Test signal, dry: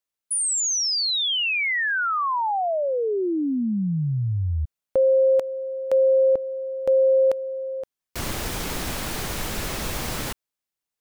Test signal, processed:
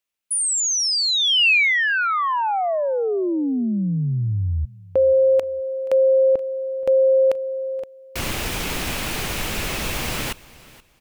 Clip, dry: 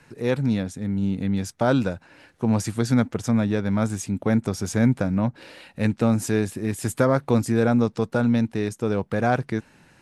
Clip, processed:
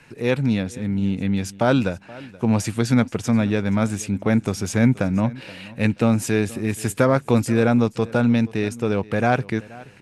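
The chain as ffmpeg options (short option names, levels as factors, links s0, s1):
-filter_complex "[0:a]equalizer=f=2600:t=o:w=0.68:g=6.5,asplit=2[s0][s1];[s1]aecho=0:1:477|954:0.0891|0.0214[s2];[s0][s2]amix=inputs=2:normalize=0,volume=1.26"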